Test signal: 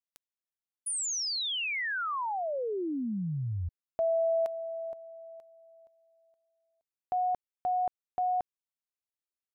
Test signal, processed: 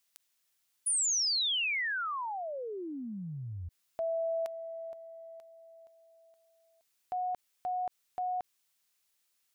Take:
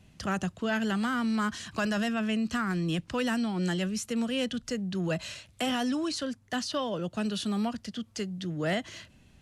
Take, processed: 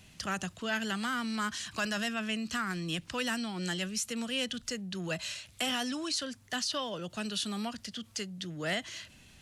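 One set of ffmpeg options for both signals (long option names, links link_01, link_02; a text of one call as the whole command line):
ffmpeg -i in.wav -af "tiltshelf=frequency=1300:gain=-5.5,acompressor=mode=upward:threshold=-36dB:ratio=1.5:attack=0.21:release=23:knee=2.83:detection=peak,volume=-2dB" out.wav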